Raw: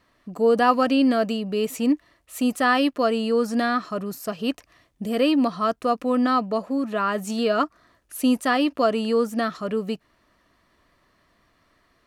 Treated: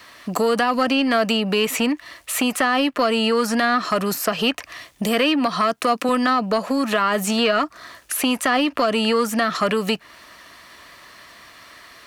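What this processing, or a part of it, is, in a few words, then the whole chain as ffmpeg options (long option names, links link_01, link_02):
mastering chain: -filter_complex "[0:a]highpass=45,equalizer=frequency=1300:width_type=o:width=0.77:gain=-1.5,acrossover=split=270|790|2700[link_01][link_02][link_03][link_04];[link_01]acompressor=threshold=-27dB:ratio=4[link_05];[link_02]acompressor=threshold=-31dB:ratio=4[link_06];[link_03]acompressor=threshold=-34dB:ratio=4[link_07];[link_04]acompressor=threshold=-51dB:ratio=4[link_08];[link_05][link_06][link_07][link_08]amix=inputs=4:normalize=0,acompressor=threshold=-30dB:ratio=2.5,asoftclip=type=tanh:threshold=-23dB,tiltshelf=frequency=660:gain=-8,alimiter=level_in=24.5dB:limit=-1dB:release=50:level=0:latency=1,asettb=1/sr,asplit=3[link_09][link_10][link_11];[link_09]atrim=end=5.464[link_12];[link_10]atrim=start=5.46:end=6.09,asetpts=PTS-STARTPTS,afade=type=in:duration=0.004:curve=qsin,afade=type=out:start_time=0.626:duration=0.004:curve=qsin,highpass=130[link_13];[link_11]atrim=start=6.086[link_14];[link_12][link_13]acrossfade=duration=0.004:curve1=hsin:curve2=qsin[link_15];[link_15][link_14]acrossfade=duration=0.004:curve1=qsin:curve2=hsin,volume=-8.5dB"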